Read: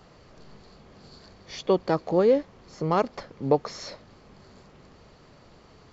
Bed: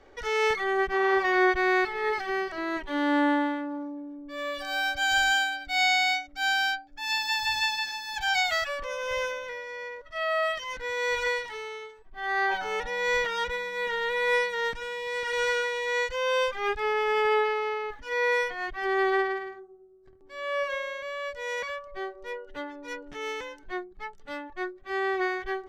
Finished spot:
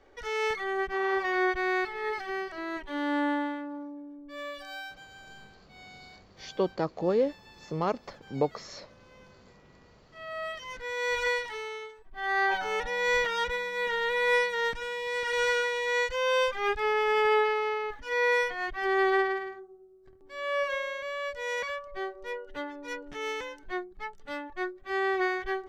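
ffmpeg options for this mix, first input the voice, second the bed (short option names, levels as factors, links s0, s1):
-filter_complex "[0:a]adelay=4900,volume=0.531[s0];[1:a]volume=14.1,afade=t=out:st=4.37:d=0.69:silence=0.0707946,afade=t=in:st=9.99:d=1.35:silence=0.0421697[s1];[s0][s1]amix=inputs=2:normalize=0"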